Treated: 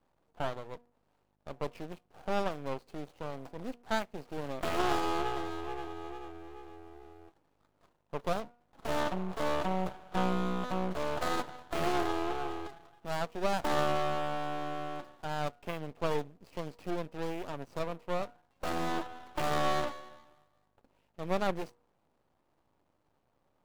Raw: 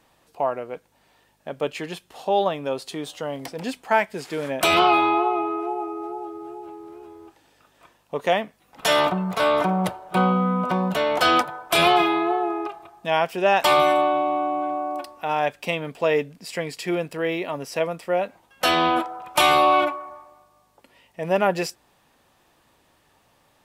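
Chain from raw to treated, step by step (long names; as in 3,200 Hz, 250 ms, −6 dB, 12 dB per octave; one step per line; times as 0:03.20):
running median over 25 samples
hum removal 239.9 Hz, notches 3
half-wave rectification
level −6 dB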